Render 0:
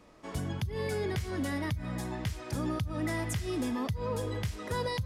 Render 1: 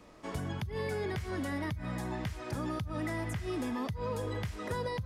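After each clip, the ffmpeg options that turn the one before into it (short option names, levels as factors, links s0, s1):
-filter_complex "[0:a]acrossover=split=670|2300[s0][s1][s2];[s0]acompressor=threshold=0.0158:ratio=4[s3];[s1]acompressor=threshold=0.00794:ratio=4[s4];[s2]acompressor=threshold=0.00224:ratio=4[s5];[s3][s4][s5]amix=inputs=3:normalize=0,volume=1.26"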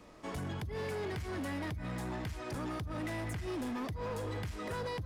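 -af "asoftclip=type=hard:threshold=0.0178"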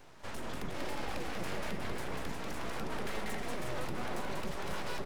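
-af "aecho=1:1:190|361|514.9|653.4|778.1:0.631|0.398|0.251|0.158|0.1,aeval=exprs='abs(val(0))':c=same,volume=1.19"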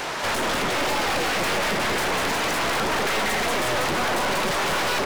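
-filter_complex "[0:a]asplit=2[s0][s1];[s1]highpass=f=720:p=1,volume=50.1,asoftclip=type=tanh:threshold=0.0562[s2];[s0][s2]amix=inputs=2:normalize=0,lowpass=f=5900:p=1,volume=0.501,volume=2.37"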